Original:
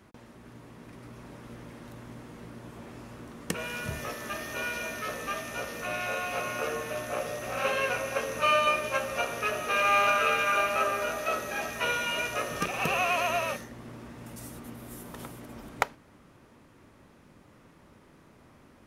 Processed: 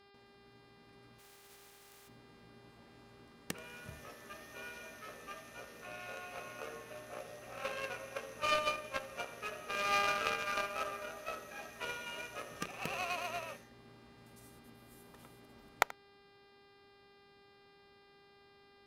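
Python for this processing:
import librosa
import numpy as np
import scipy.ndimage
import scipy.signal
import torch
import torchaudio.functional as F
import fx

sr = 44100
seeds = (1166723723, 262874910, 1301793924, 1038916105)

p1 = fx.spec_flatten(x, sr, power=0.2, at=(1.18, 2.07), fade=0.02)
p2 = fx.dmg_buzz(p1, sr, base_hz=400.0, harmonics=13, level_db=-48.0, tilt_db=-4, odd_only=False)
p3 = fx.cheby_harmonics(p2, sr, harmonics=(7,), levels_db=(-19,), full_scale_db=-5.0)
p4 = p3 + fx.echo_single(p3, sr, ms=82, db=-19.5, dry=0)
y = p4 * librosa.db_to_amplitude(-2.5)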